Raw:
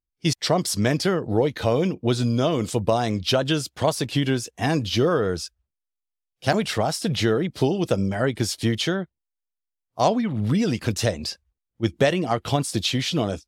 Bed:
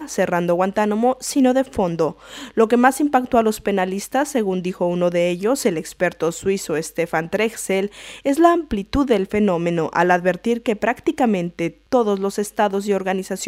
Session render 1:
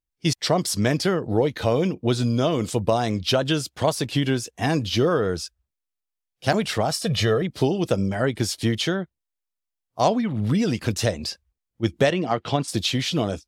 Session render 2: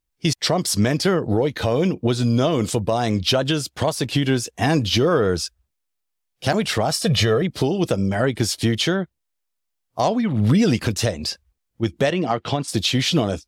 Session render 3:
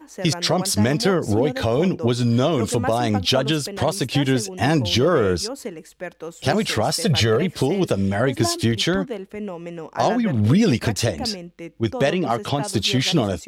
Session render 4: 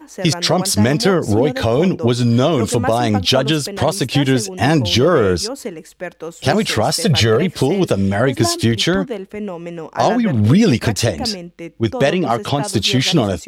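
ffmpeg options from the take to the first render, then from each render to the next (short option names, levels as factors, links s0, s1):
-filter_complex "[0:a]asettb=1/sr,asplit=3[s0][s1][s2];[s0]atrim=end=6.914[s3];[s1]atrim=start=6.91:end=7.42,asetpts=PTS-STARTPTS,afade=t=in:d=0.004:c=qsin,afade=t=out:st=0.506:d=0.004:c=qsin,aecho=1:1:1.7:0.65,atrim=end_sample=22491[s4];[s2]atrim=start=7.416[s5];[s3][s4]acrossfade=d=0.004:c1=hsin:c2=qsin[s6];[s6][s5]acrossfade=d=0.004:c1=qsin:c2=hsin,asettb=1/sr,asplit=3[s7][s8][s9];[s7]atrim=end=12.104[s10];[s8]atrim=start=12.1:end=12.68,asetpts=PTS-STARTPTS,afade=t=in:d=0.004:c=qsin,afade=t=out:st=0.576:d=0.004:c=qsin,highpass=120,lowpass=5000[s11];[s9]atrim=start=12.676[s12];[s10][s11]acrossfade=d=0.004:c1=hsin:c2=qsin[s13];[s13][s12]acrossfade=d=0.004:c1=qsin:c2=hsin"
-af "alimiter=limit=0.178:level=0:latency=1:release=433,acontrast=85"
-filter_complex "[1:a]volume=0.224[s0];[0:a][s0]amix=inputs=2:normalize=0"
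-af "volume=1.68"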